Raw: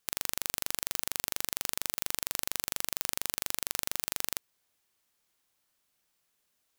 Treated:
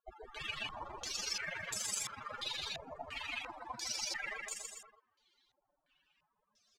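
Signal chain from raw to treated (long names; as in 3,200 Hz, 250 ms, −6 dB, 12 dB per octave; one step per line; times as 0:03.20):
spectral peaks only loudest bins 32
bouncing-ball delay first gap 150 ms, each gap 0.9×, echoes 5
low-pass on a step sequencer 2.9 Hz 700–7,500 Hz
level +11 dB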